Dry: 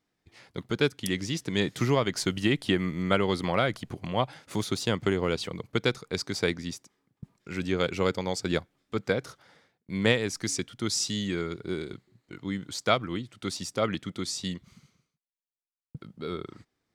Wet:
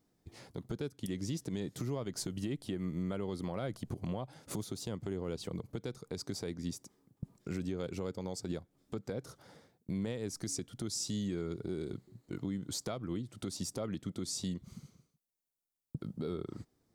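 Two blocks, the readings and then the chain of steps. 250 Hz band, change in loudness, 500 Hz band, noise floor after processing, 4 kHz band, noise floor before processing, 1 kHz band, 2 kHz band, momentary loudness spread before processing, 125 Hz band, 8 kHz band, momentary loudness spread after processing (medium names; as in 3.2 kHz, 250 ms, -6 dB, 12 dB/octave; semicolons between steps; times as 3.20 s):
-7.5 dB, -10.0 dB, -11.5 dB, -82 dBFS, -13.0 dB, -85 dBFS, -16.5 dB, -20.5 dB, 13 LU, -7.0 dB, -6.5 dB, 10 LU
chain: peaking EQ 2.2 kHz -13 dB 2.5 oct; compression 6:1, threshold -40 dBFS, peak gain reduction 18.5 dB; peak limiter -34 dBFS, peak gain reduction 8.5 dB; trim +7 dB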